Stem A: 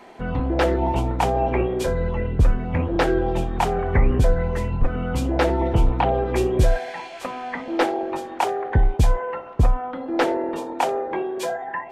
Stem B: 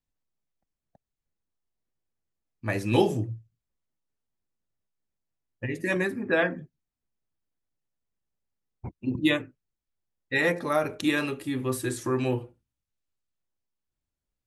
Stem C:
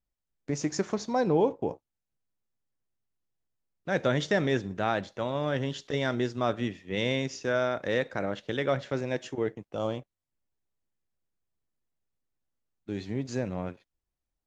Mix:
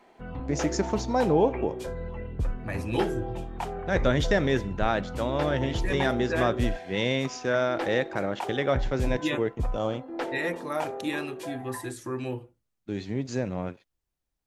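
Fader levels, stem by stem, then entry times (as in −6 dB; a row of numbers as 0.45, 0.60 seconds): −12.0, −6.0, +2.0 decibels; 0.00, 0.00, 0.00 seconds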